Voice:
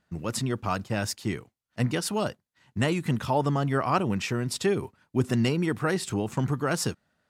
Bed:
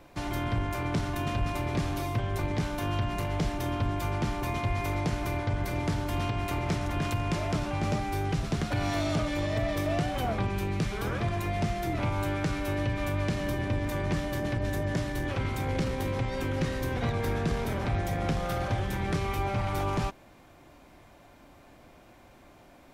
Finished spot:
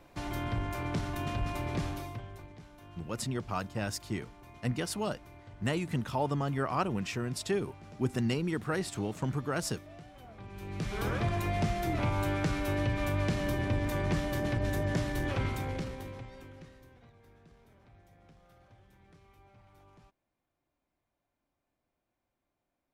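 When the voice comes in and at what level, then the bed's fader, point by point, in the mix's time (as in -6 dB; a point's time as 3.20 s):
2.85 s, -6.0 dB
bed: 1.86 s -4 dB
2.56 s -21.5 dB
10.32 s -21.5 dB
10.99 s -1 dB
15.44 s -1 dB
17.13 s -30.5 dB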